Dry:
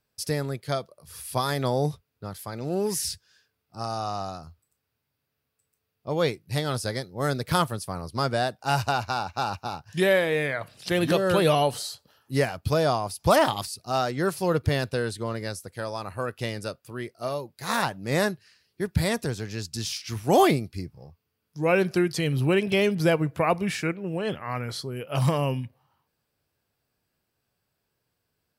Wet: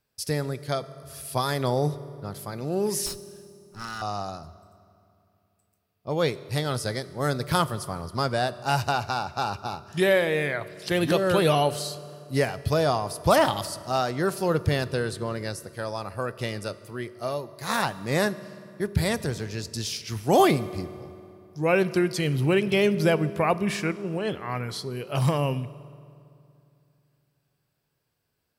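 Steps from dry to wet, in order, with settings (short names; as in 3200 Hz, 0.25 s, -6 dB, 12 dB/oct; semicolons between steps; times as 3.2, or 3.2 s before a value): 3.06–4.02 minimum comb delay 0.75 ms; reverb RT60 2.6 s, pre-delay 3 ms, DRR 15 dB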